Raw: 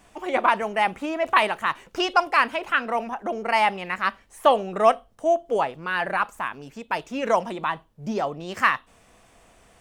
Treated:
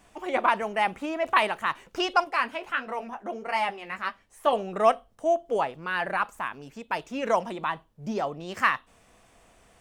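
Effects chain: 2.24–4.53 s: flange 1.5 Hz, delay 9.8 ms, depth 5.5 ms, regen -28%; trim -3 dB

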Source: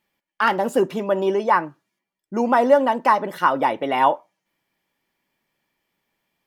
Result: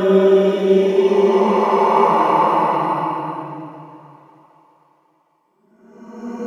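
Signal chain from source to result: vibrato 1.3 Hz 6.7 cents; touch-sensitive flanger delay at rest 3 ms, full sweep at -15 dBFS; Paulstretch 5.8×, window 0.50 s, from 1.15 s; on a send: thinning echo 763 ms, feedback 27%, high-pass 150 Hz, level -20.5 dB; on the sum: trim +8 dB

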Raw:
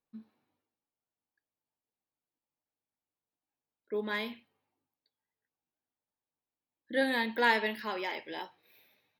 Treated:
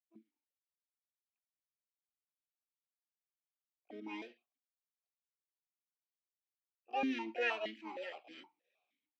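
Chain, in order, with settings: companding laws mixed up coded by A; harmony voices +7 st 0 dB; stepped vowel filter 6.4 Hz; trim +1 dB

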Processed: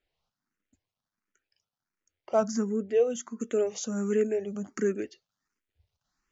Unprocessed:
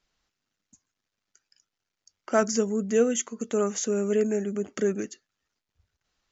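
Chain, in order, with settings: treble shelf 3.9 kHz -12 dB, from 3.40 s -3 dB; barber-pole phaser +1.4 Hz

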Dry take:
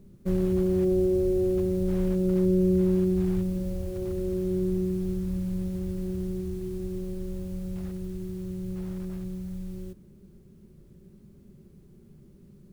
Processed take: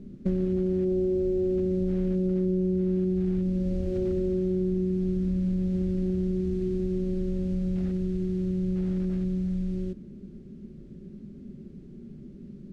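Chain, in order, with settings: fifteen-band graphic EQ 100 Hz -4 dB, 250 Hz +10 dB, 1 kHz -8 dB; compression, threshold -29 dBFS, peak gain reduction 12 dB; distance through air 110 m; trim +5.5 dB

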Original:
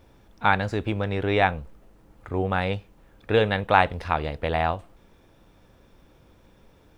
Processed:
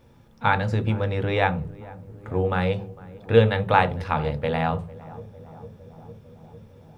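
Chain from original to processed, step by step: filtered feedback delay 454 ms, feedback 83%, low-pass 1 kHz, level -19 dB; on a send at -6.5 dB: reverberation RT60 0.30 s, pre-delay 3 ms; on the sum: trim -1.5 dB

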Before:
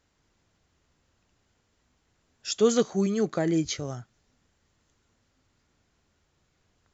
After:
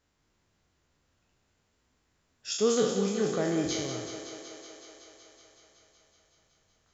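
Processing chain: spectral sustain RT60 0.79 s; thinning echo 187 ms, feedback 79%, high-pass 210 Hz, level -8.5 dB; 3.40–3.94 s: crackle 210 per s -49 dBFS; trim -5.5 dB

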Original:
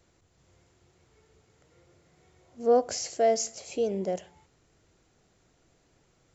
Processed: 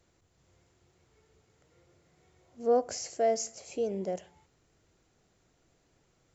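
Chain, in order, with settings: dynamic bell 3.6 kHz, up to -5 dB, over -51 dBFS, Q 1.8; trim -3.5 dB

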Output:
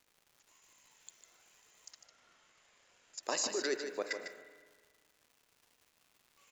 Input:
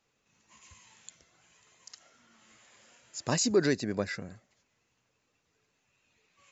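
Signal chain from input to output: high-pass 360 Hz 24 dB/octave; treble shelf 6.3 kHz +8 dB; level held to a coarse grid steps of 17 dB; crackle 280 per s -54 dBFS; 1.91–3.23 s: distance through air 70 m; on a send: delay 151 ms -8 dB; on the sum: spring tank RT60 1.6 s, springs 36/56 ms, chirp 80 ms, DRR 10 dB

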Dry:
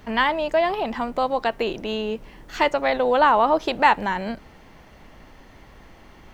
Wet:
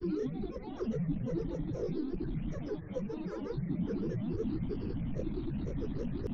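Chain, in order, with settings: one-bit comparator; cascade formant filter i; distance through air 230 m; static phaser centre 1 kHz, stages 4; repeats whose band climbs or falls 119 ms, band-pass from 200 Hz, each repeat 0.7 oct, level -2 dB; granulator, grains 28 per s, pitch spread up and down by 12 st; three bands compressed up and down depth 40%; trim +4 dB

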